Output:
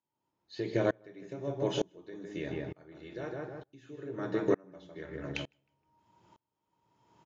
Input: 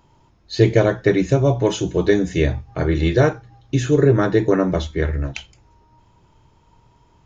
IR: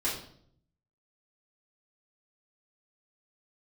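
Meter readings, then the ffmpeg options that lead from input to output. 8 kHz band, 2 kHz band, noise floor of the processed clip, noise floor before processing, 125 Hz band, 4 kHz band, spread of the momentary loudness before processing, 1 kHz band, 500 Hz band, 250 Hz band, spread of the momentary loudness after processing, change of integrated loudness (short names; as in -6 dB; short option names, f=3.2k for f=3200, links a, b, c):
n/a, -17.0 dB, under -85 dBFS, -56 dBFS, -23.5 dB, -14.0 dB, 9 LU, -16.0 dB, -16.5 dB, -17.5 dB, 16 LU, -18.0 dB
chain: -filter_complex "[0:a]acrossover=split=4700[a][b];[b]acompressor=threshold=-47dB:ratio=4:attack=1:release=60[c];[a][c]amix=inputs=2:normalize=0,highpass=180,acompressor=threshold=-20dB:ratio=3,asplit=2[d][e];[e]adelay=156,lowpass=f=2.2k:p=1,volume=-5.5dB,asplit=2[f][g];[g]adelay=156,lowpass=f=2.2k:p=1,volume=0.3,asplit=2[h][i];[i]adelay=156,lowpass=f=2.2k:p=1,volume=0.3,asplit=2[j][k];[k]adelay=156,lowpass=f=2.2k:p=1,volume=0.3[l];[d][f][h][j][l]amix=inputs=5:normalize=0,asplit=2[m][n];[1:a]atrim=start_sample=2205[o];[n][o]afir=irnorm=-1:irlink=0,volume=-19.5dB[p];[m][p]amix=inputs=2:normalize=0,aeval=exprs='val(0)*pow(10,-32*if(lt(mod(-1.1*n/s,1),2*abs(-1.1)/1000),1-mod(-1.1*n/s,1)/(2*abs(-1.1)/1000),(mod(-1.1*n/s,1)-2*abs(-1.1)/1000)/(1-2*abs(-1.1)/1000))/20)':c=same,volume=-4dB"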